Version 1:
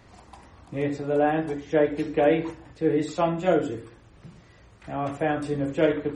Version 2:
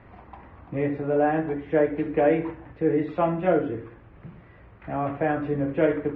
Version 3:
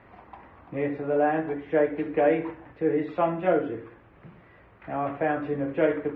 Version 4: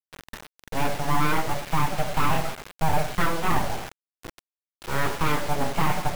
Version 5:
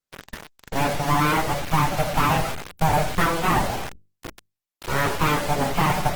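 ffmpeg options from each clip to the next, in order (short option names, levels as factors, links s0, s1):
-filter_complex "[0:a]lowpass=f=2400:w=0.5412,lowpass=f=2400:w=1.3066,asplit=2[s0][s1];[s1]acompressor=threshold=0.0355:ratio=6,volume=0.708[s2];[s0][s2]amix=inputs=2:normalize=0,volume=0.841"
-af "lowshelf=f=180:g=-10"
-af "aeval=exprs='abs(val(0))':c=same,alimiter=limit=0.126:level=0:latency=1:release=14,acrusher=bits=4:dc=4:mix=0:aa=0.000001,volume=2.11"
-af "volume=1.58" -ar 48000 -c:a libopus -b:a 16k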